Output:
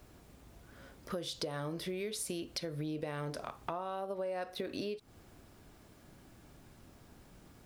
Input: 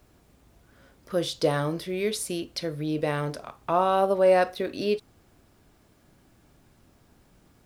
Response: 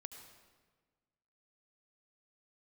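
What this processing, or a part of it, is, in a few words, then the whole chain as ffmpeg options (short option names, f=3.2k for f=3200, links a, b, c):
serial compression, peaks first: -af "acompressor=threshold=-31dB:ratio=6,acompressor=threshold=-39dB:ratio=2.5,volume=1.5dB"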